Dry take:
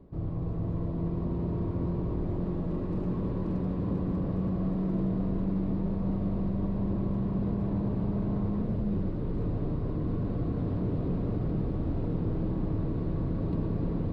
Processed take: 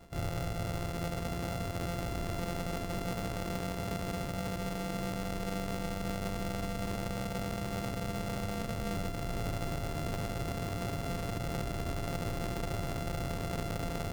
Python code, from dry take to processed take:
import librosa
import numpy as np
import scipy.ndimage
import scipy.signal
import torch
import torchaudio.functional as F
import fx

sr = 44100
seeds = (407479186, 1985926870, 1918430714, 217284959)

y = np.r_[np.sort(x[:len(x) // 64 * 64].reshape(-1, 64), axis=1).ravel(), x[len(x) // 64 * 64:]]
y = fx.rider(y, sr, range_db=10, speed_s=0.5)
y = y * librosa.db_to_amplitude(-6.0)